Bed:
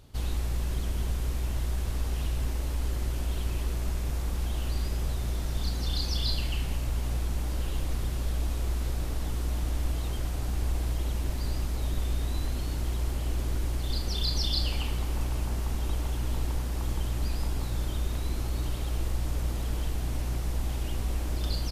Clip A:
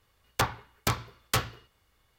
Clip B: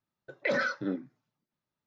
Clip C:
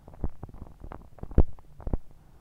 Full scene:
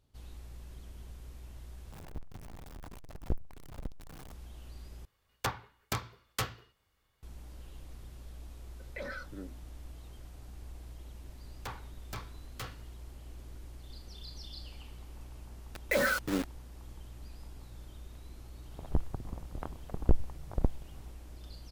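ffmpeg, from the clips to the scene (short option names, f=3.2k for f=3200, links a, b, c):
-filter_complex "[3:a]asplit=2[a][b];[1:a]asplit=2[c][d];[2:a]asplit=2[e][f];[0:a]volume=-18dB[g];[a]aeval=exprs='val(0)+0.5*0.0316*sgn(val(0))':c=same[h];[d]asoftclip=type=tanh:threshold=-25.5dB[i];[f]acrusher=bits=5:mix=0:aa=0.000001[j];[b]alimiter=level_in=10.5dB:limit=-1dB:release=50:level=0:latency=1[k];[g]asplit=3[l][m][n];[l]atrim=end=1.924[o];[h]atrim=end=2.4,asetpts=PTS-STARTPTS,volume=-12.5dB[p];[m]atrim=start=4.316:end=5.054[q];[c]atrim=end=2.18,asetpts=PTS-STARTPTS,volume=-7dB[r];[n]atrim=start=7.226[s];[e]atrim=end=1.86,asetpts=PTS-STARTPTS,volume=-13dB,afade=t=in:d=0.004:c=hsin,afade=t=out:st=1.856:d=0.004:c=hsin,adelay=8510[t];[i]atrim=end=2.18,asetpts=PTS-STARTPTS,volume=-10.5dB,afade=t=in:d=0.004:c=hsin,afade=t=out:st=2.176:d=0.004:c=hsin,adelay=11260[u];[j]atrim=end=1.86,asetpts=PTS-STARTPTS,afade=t=in:d=0.004:c=hsin,afade=t=out:st=1.856:d=0.004:c=hsin,adelay=15460[v];[k]atrim=end=2.4,asetpts=PTS-STARTPTS,volume=-9dB,afade=t=in:d=0.004:c=hsin,afade=t=out:st=2.396:d=0.004:c=hsin,adelay=18710[w];[o][p]acrossfade=d=0.004:c1=hsin:c2=hsin[x];[x][q]acrossfade=d=0.004:c1=hsin:c2=hsin[y];[y][r]acrossfade=d=0.004:c1=hsin:c2=hsin[z];[z][s]acrossfade=d=0.004:c1=hsin:c2=hsin[aa];[aa][t][u][v][w]amix=inputs=5:normalize=0"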